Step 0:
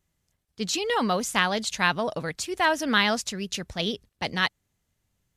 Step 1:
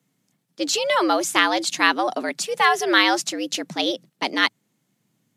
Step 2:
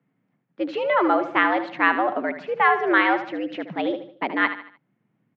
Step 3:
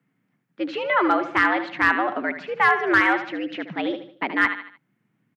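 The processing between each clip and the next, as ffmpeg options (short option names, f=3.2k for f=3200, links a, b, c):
-af "afreqshift=110,volume=5dB"
-filter_complex "[0:a]lowpass=f=2.2k:w=0.5412,lowpass=f=2.2k:w=1.3066,asplit=2[a][b];[b]aecho=0:1:75|150|225|300:0.282|0.113|0.0451|0.018[c];[a][c]amix=inputs=2:normalize=0"
-filter_complex "[0:a]firequalizer=gain_entry='entry(320,0);entry(550,-4);entry(1500,4)':delay=0.05:min_phase=1,asoftclip=type=hard:threshold=-8.5dB,acrossover=split=2700[a][b];[b]acompressor=threshold=-36dB:ratio=4:attack=1:release=60[c];[a][c]amix=inputs=2:normalize=0"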